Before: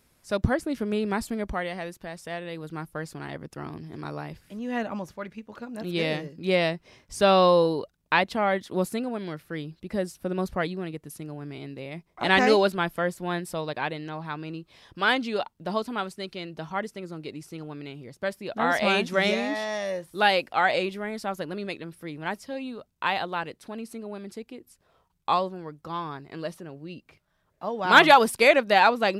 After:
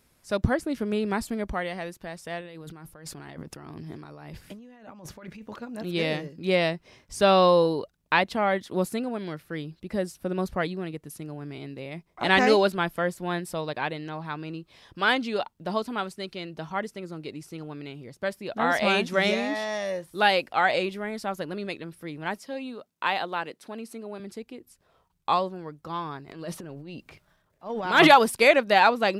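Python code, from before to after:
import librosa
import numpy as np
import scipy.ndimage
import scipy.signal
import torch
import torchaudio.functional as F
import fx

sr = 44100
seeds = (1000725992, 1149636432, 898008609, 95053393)

y = fx.over_compress(x, sr, threshold_db=-43.0, ratio=-1.0, at=(2.41, 5.56))
y = fx.highpass(y, sr, hz=200.0, slope=12, at=(22.38, 24.2))
y = fx.transient(y, sr, attack_db=-11, sustain_db=9, at=(26.27, 28.07), fade=0.02)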